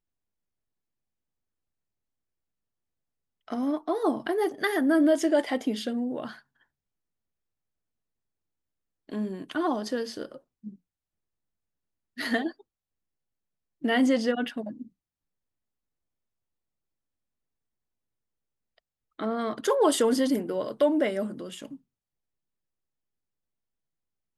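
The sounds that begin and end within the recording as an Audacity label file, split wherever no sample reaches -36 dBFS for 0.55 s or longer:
3.480000	6.310000	sound
9.090000	10.690000	sound
12.180000	12.500000	sound
13.840000	14.820000	sound
19.190000	21.740000	sound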